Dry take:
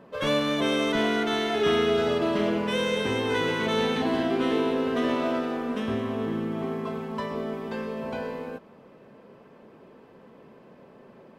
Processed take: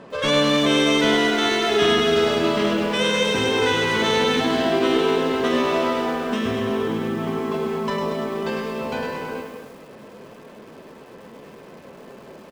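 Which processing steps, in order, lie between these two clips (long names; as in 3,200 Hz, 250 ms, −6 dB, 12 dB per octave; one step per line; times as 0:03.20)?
in parallel at −2.5 dB: downward compressor 8 to 1, threshold −40 dBFS, peak gain reduction 20 dB
on the sum: low-pass filter 8,800 Hz 24 dB per octave
mains-hum notches 60/120/180/240 Hz
far-end echo of a speakerphone 210 ms, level −8 dB
tempo change 0.91×
high-shelf EQ 3,100 Hz +8 dB
feedback echo at a low word length 102 ms, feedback 55%, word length 8 bits, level −7 dB
level +3 dB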